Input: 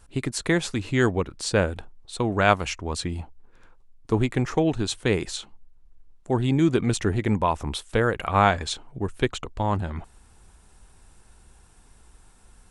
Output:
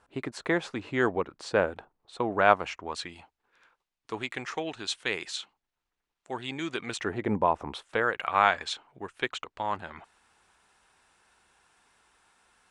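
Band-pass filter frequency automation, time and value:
band-pass filter, Q 0.64
2.73 s 890 Hz
3.13 s 2.6 kHz
6.84 s 2.6 kHz
7.37 s 490 Hz
8.19 s 1.9 kHz

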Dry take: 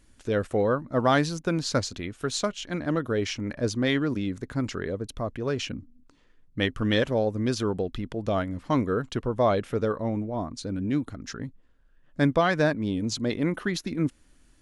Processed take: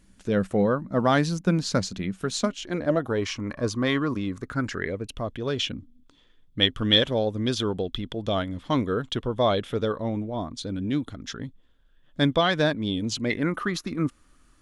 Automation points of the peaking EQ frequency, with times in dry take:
peaking EQ +14.5 dB 0.28 oct
2.34 s 190 Hz
3.23 s 1.1 kHz
4.36 s 1.1 kHz
5.29 s 3.4 kHz
13.08 s 3.4 kHz
13.54 s 1.2 kHz

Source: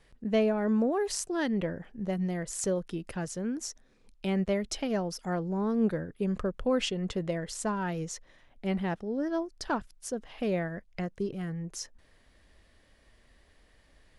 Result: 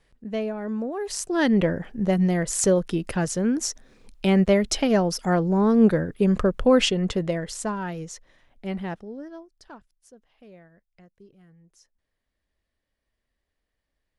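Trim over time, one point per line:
0.93 s -2.5 dB
1.48 s +10 dB
6.81 s +10 dB
8.04 s 0 dB
8.94 s 0 dB
9.43 s -12 dB
10.46 s -19 dB

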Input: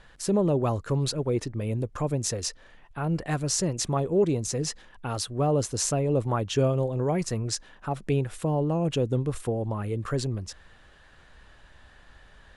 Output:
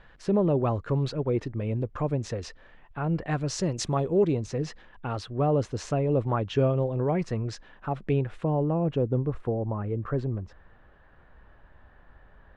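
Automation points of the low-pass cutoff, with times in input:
3.26 s 2.8 kHz
3.83 s 6.2 kHz
4.53 s 2.8 kHz
8.21 s 2.8 kHz
9.02 s 1.4 kHz

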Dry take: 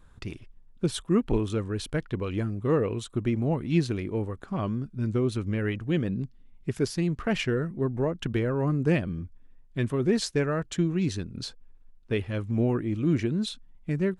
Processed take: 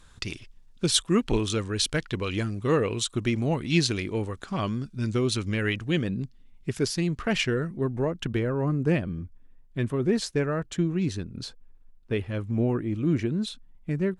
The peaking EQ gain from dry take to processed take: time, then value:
peaking EQ 5.5 kHz 2.8 oct
5.71 s +14.5 dB
6.17 s +6.5 dB
7.91 s +6.5 dB
8.61 s -1.5 dB

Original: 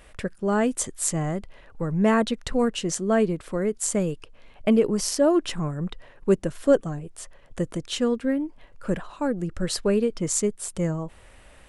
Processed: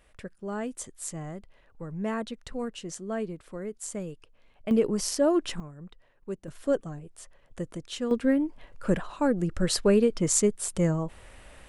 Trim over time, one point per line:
-11 dB
from 4.71 s -3.5 dB
from 5.60 s -15.5 dB
from 6.48 s -7.5 dB
from 8.11 s +1 dB

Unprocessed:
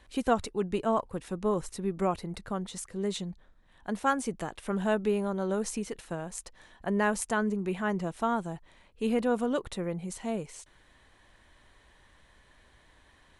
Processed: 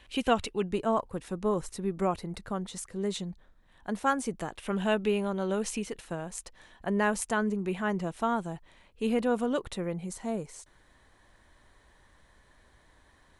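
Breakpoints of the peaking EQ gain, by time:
peaking EQ 2.8 kHz 0.74 oct
+10.5 dB
from 0.69 s -0.5 dB
from 4.59 s +8 dB
from 5.86 s +1.5 dB
from 10.08 s -6.5 dB

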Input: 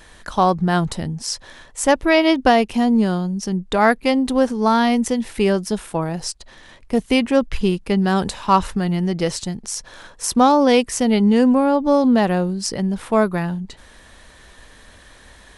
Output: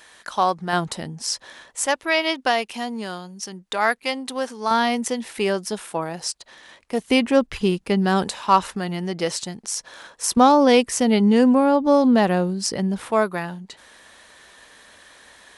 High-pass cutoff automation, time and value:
high-pass 6 dB/octave
810 Hz
from 0.73 s 390 Hz
from 1.86 s 1.3 kHz
from 4.71 s 510 Hz
from 7.07 s 170 Hz
from 8.24 s 410 Hz
from 10.37 s 140 Hz
from 13.11 s 500 Hz

